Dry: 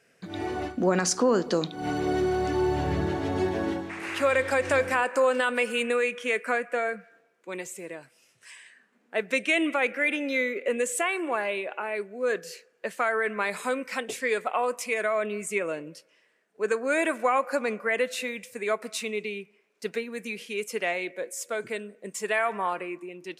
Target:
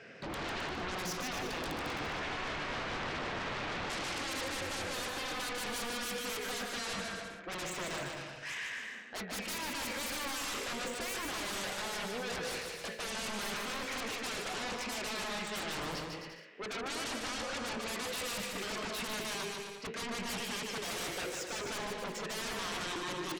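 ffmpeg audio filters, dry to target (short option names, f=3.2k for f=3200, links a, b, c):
-filter_complex "[0:a]highpass=f=58:w=0.5412,highpass=f=58:w=1.3066,areverse,acompressor=threshold=-38dB:ratio=6,areverse,flanger=delay=9:depth=9.8:regen=78:speed=0.34:shape=sinusoidal,acrossover=split=5100[a][b];[a]aeval=exprs='0.0224*sin(PI/2*7.08*val(0)/0.0224)':c=same[c];[b]acrusher=bits=6:mix=0:aa=0.000001[d];[c][d]amix=inputs=2:normalize=0,aecho=1:1:150|262.5|346.9|410.2|457.6:0.631|0.398|0.251|0.158|0.1,volume=-4dB"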